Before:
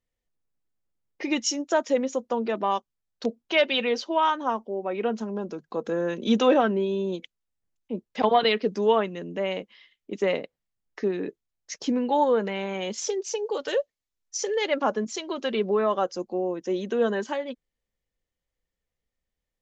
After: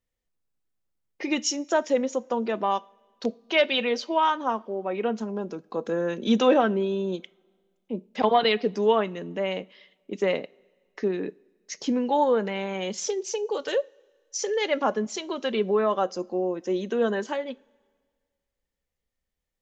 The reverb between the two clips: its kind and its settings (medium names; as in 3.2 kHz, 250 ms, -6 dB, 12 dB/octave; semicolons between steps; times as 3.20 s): two-slope reverb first 0.33 s, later 1.8 s, from -18 dB, DRR 18 dB